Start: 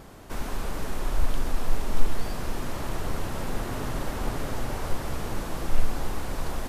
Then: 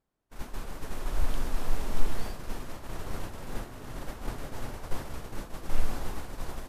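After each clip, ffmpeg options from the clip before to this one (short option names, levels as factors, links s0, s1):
-af "agate=range=0.0224:threshold=0.0794:ratio=3:detection=peak,bandreject=f=47.38:t=h:w=4,bandreject=f=94.76:t=h:w=4,bandreject=f=142.14:t=h:w=4,bandreject=f=189.52:t=h:w=4,bandreject=f=236.9:t=h:w=4,bandreject=f=284.28:t=h:w=4,bandreject=f=331.66:t=h:w=4,bandreject=f=379.04:t=h:w=4,bandreject=f=426.42:t=h:w=4,bandreject=f=473.8:t=h:w=4,bandreject=f=521.18:t=h:w=4,bandreject=f=568.56:t=h:w=4,bandreject=f=615.94:t=h:w=4,bandreject=f=663.32:t=h:w=4,bandreject=f=710.7:t=h:w=4,bandreject=f=758.08:t=h:w=4,bandreject=f=805.46:t=h:w=4,bandreject=f=852.84:t=h:w=4,bandreject=f=900.22:t=h:w=4,bandreject=f=947.6:t=h:w=4,bandreject=f=994.98:t=h:w=4,bandreject=f=1042.36:t=h:w=4,bandreject=f=1089.74:t=h:w=4,bandreject=f=1137.12:t=h:w=4,bandreject=f=1184.5:t=h:w=4,bandreject=f=1231.88:t=h:w=4,bandreject=f=1279.26:t=h:w=4,bandreject=f=1326.64:t=h:w=4,bandreject=f=1374.02:t=h:w=4,volume=0.708"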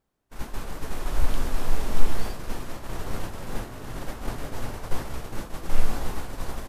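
-filter_complex "[0:a]asplit=2[s0][s1];[s1]adelay=18,volume=0.251[s2];[s0][s2]amix=inputs=2:normalize=0,volume=1.68"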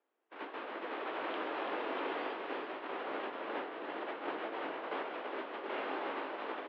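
-af "aecho=1:1:334:0.473,highpass=f=260:t=q:w=0.5412,highpass=f=260:t=q:w=1.307,lowpass=f=3200:t=q:w=0.5176,lowpass=f=3200:t=q:w=0.7071,lowpass=f=3200:t=q:w=1.932,afreqshift=55,volume=0.841"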